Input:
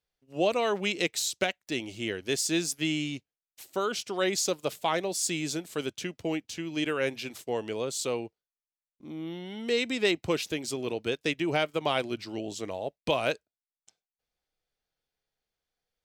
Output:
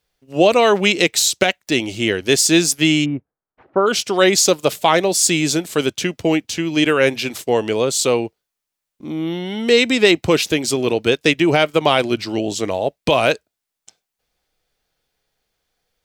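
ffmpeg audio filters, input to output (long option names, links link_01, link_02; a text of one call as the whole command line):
ffmpeg -i in.wav -filter_complex "[0:a]asplit=3[link_01][link_02][link_03];[link_01]afade=type=out:start_time=3.04:duration=0.02[link_04];[link_02]lowpass=frequency=1400:width=0.5412,lowpass=frequency=1400:width=1.3066,afade=type=in:start_time=3.04:duration=0.02,afade=type=out:start_time=3.86:duration=0.02[link_05];[link_03]afade=type=in:start_time=3.86:duration=0.02[link_06];[link_04][link_05][link_06]amix=inputs=3:normalize=0,alimiter=level_in=15dB:limit=-1dB:release=50:level=0:latency=1,volume=-1dB" out.wav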